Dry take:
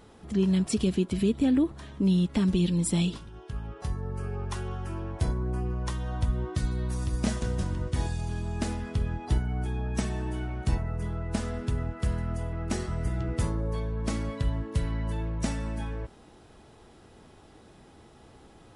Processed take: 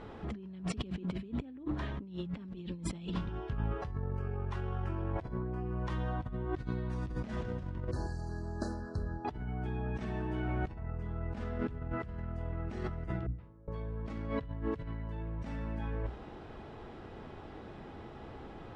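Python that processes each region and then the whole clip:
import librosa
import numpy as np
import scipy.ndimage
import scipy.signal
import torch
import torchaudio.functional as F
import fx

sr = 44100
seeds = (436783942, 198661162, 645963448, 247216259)

y = fx.chain(x, sr, fx.brickwall_bandstop(low_hz=1800.0, high_hz=3900.0),
    fx.pre_emphasis(coefficient=0.8),
    fx.small_body(hz=(360.0, 580.0, 2900.0), ring_ms=45, db=8), at=(7.91, 9.25))
y = fx.chain(y, sr, fx.highpass(hz=47.0, slope=12),
    fx.gate_flip(shuts_db=-28.0, range_db=-33),
    fx.resample_linear(factor=6), at=(13.26, 13.68))
y = scipy.signal.sosfilt(scipy.signal.butter(2, 2600.0, 'lowpass', fs=sr, output='sos'), y)
y = fx.hum_notches(y, sr, base_hz=60, count=5)
y = fx.over_compress(y, sr, threshold_db=-38.0, ratio=-1.0)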